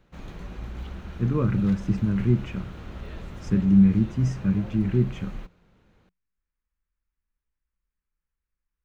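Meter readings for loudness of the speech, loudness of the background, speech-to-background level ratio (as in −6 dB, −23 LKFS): −23.5 LKFS, −40.0 LKFS, 16.5 dB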